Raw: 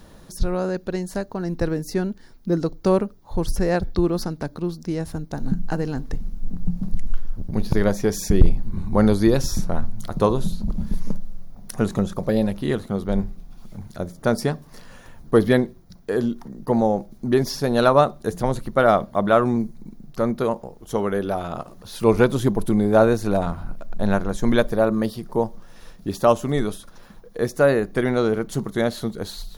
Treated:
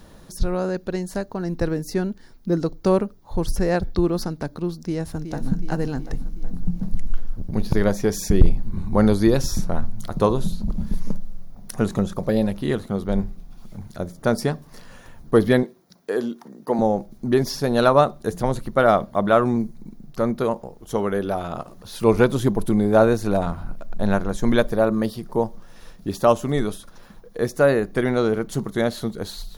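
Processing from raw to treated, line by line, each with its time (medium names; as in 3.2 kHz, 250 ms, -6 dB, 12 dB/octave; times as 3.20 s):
4.80–5.50 s: echo throw 370 ms, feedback 60%, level -9 dB
15.63–16.79 s: high-pass 270 Hz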